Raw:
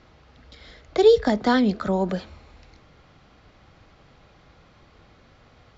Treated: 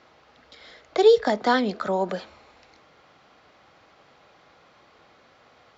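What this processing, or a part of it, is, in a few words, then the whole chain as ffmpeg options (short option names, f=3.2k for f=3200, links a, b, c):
filter by subtraction: -filter_complex "[0:a]asplit=2[a][b];[b]lowpass=690,volume=-1[c];[a][c]amix=inputs=2:normalize=0"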